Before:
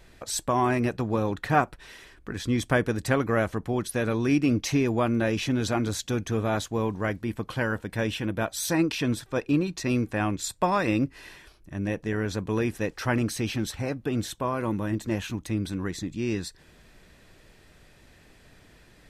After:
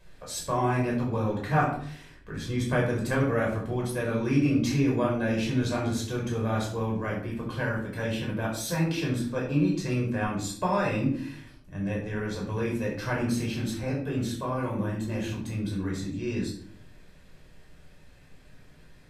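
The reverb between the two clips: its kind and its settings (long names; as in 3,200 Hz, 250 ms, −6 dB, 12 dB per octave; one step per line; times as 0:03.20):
rectangular room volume 740 cubic metres, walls furnished, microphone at 5.3 metres
level −9.5 dB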